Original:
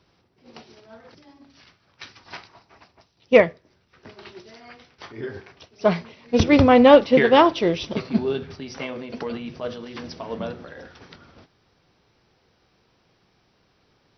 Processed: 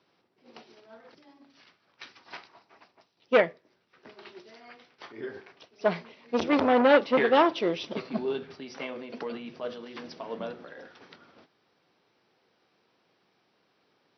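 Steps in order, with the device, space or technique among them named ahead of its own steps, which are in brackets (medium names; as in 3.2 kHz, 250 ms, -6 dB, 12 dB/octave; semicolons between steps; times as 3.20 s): public-address speaker with an overloaded transformer (transformer saturation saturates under 1 kHz; band-pass 230–5100 Hz); trim -4.5 dB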